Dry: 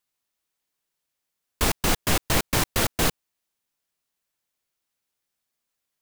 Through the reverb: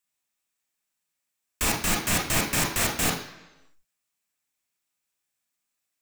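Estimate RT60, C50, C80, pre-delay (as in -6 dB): 1.0 s, 6.5 dB, 9.5 dB, 28 ms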